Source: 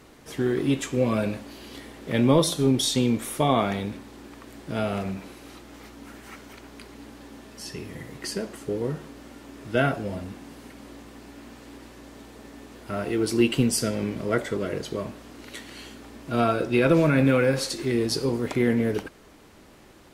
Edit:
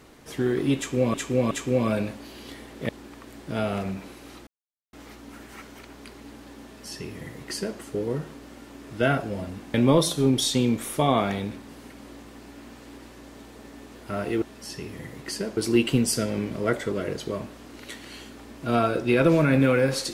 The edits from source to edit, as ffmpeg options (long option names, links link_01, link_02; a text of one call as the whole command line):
ffmpeg -i in.wav -filter_complex "[0:a]asplit=9[link_01][link_02][link_03][link_04][link_05][link_06][link_07][link_08][link_09];[link_01]atrim=end=1.142[link_10];[link_02]atrim=start=0.768:end=1.142[link_11];[link_03]atrim=start=0.768:end=2.152[link_12];[link_04]atrim=start=4.088:end=5.67,asetpts=PTS-STARTPTS,afade=type=out:start_time=1.578:duration=0.004:curve=hsin,apad=pad_dur=0.46[link_13];[link_05]atrim=start=5.67:end=10.482,asetpts=PTS-STARTPTS,afade=type=in:duration=0.004:curve=hsin[link_14];[link_06]atrim=start=2.148:end=4.092[link_15];[link_07]atrim=start=10.478:end=13.222[link_16];[link_08]atrim=start=7.378:end=8.532[link_17];[link_09]atrim=start=13.218[link_18];[link_10][link_11]acrossfade=duration=0.004:curve1=hsin:curve2=hsin[link_19];[link_19][link_12]acrossfade=duration=0.004:curve1=hsin:curve2=hsin[link_20];[link_13][link_14]concat=n=2:v=0:a=1[link_21];[link_20][link_21]acrossfade=duration=0.004:curve1=hsin:curve2=hsin[link_22];[link_22][link_15]acrossfade=duration=0.004:curve1=hsin:curve2=hsin[link_23];[link_23][link_16]acrossfade=duration=0.004:curve1=hsin:curve2=hsin[link_24];[link_24][link_17]acrossfade=duration=0.004:curve1=hsin:curve2=hsin[link_25];[link_25][link_18]acrossfade=duration=0.004:curve1=hsin:curve2=hsin" out.wav